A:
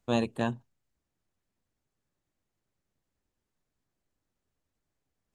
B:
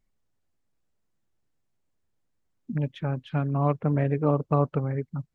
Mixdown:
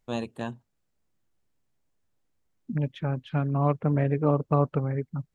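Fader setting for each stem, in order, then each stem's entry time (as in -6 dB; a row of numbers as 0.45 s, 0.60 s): -4.0 dB, 0.0 dB; 0.00 s, 0.00 s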